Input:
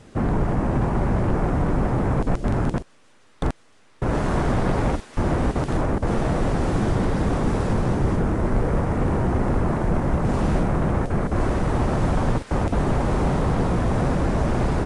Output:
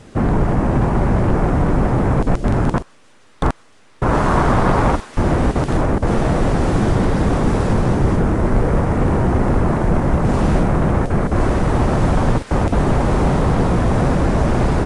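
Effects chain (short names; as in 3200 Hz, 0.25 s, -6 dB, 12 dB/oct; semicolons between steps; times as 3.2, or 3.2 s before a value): 2.68–5.11 dynamic EQ 1100 Hz, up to +7 dB, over -44 dBFS, Q 1.4; gain +5.5 dB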